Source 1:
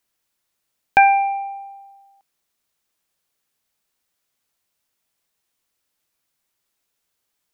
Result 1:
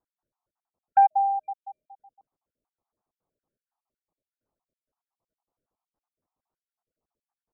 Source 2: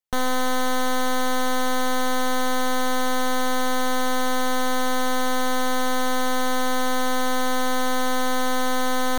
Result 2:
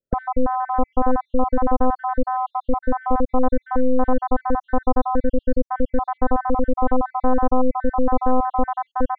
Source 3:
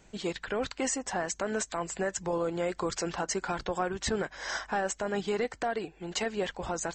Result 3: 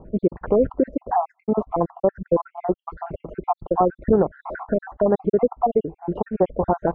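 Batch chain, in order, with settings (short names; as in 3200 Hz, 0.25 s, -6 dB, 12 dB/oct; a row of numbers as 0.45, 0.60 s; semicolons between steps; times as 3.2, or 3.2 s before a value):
random spectral dropouts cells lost 61%; in parallel at 0 dB: compressor, threshold -32 dBFS; on the sum: LPF 1000 Hz 24 dB/oct; match loudness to -23 LUFS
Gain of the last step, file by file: -3.5, +6.0, +11.0 dB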